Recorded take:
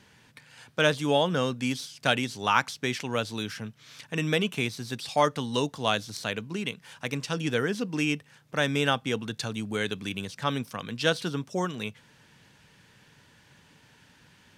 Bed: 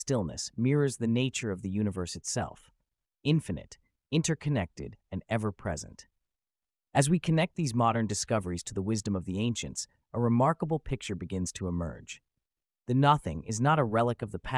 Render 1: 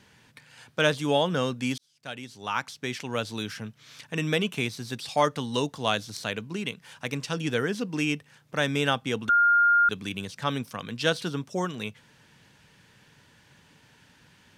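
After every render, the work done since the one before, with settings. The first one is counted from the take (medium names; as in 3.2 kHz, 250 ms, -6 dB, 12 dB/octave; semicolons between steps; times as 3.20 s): 1.78–3.34 s: fade in; 9.29–9.89 s: bleep 1.41 kHz -16.5 dBFS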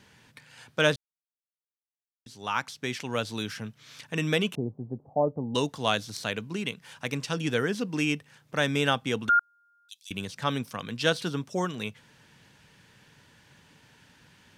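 0.96–2.26 s: mute; 4.55–5.55 s: steep low-pass 780 Hz; 9.39–10.11 s: inverse Chebyshev high-pass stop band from 1.2 kHz, stop band 60 dB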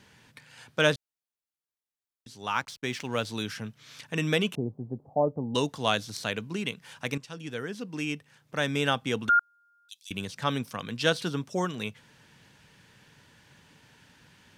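2.48–3.26 s: hysteresis with a dead band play -48 dBFS; 7.18–9.24 s: fade in, from -13 dB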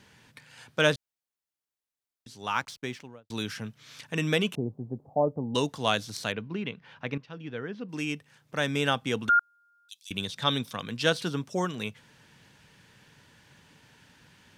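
2.69–3.30 s: studio fade out; 6.32–7.89 s: distance through air 280 m; 10.17–10.81 s: peaking EQ 3.6 kHz +14 dB 0.2 oct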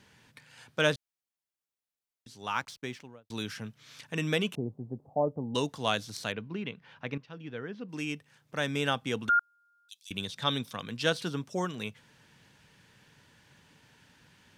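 trim -3 dB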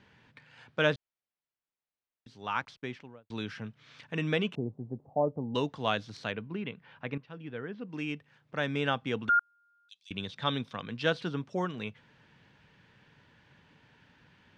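low-pass 3.2 kHz 12 dB/octave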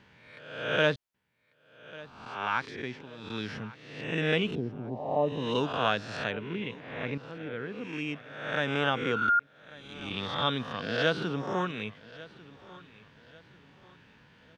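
reverse spectral sustain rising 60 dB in 0.87 s; feedback delay 1144 ms, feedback 38%, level -20 dB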